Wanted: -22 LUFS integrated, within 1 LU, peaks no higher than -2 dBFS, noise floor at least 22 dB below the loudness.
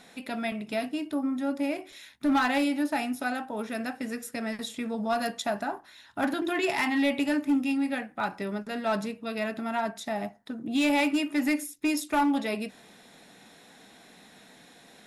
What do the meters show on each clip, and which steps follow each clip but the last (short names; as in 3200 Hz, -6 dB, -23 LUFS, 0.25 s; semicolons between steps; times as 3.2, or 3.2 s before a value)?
clipped 0.9%; flat tops at -19.5 dBFS; loudness -29.0 LUFS; peak -19.5 dBFS; loudness target -22.0 LUFS
-> clip repair -19.5 dBFS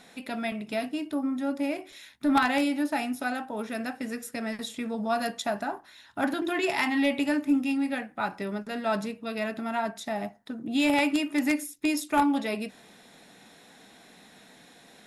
clipped 0.0%; loudness -29.0 LUFS; peak -10.5 dBFS; loudness target -22.0 LUFS
-> gain +7 dB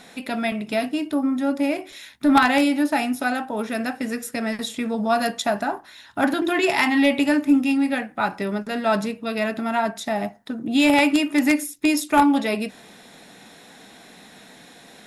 loudness -22.0 LUFS; peak -3.5 dBFS; noise floor -48 dBFS